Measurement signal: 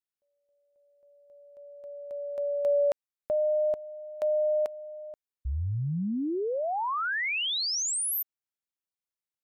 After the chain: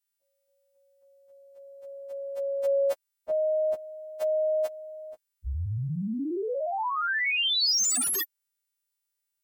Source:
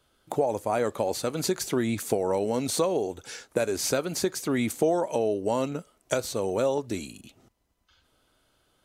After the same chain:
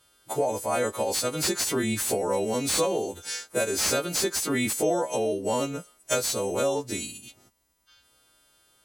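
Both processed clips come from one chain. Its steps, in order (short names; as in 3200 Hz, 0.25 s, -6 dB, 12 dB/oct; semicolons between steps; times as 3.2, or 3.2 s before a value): frequency quantiser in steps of 2 st; slew limiter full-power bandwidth 440 Hz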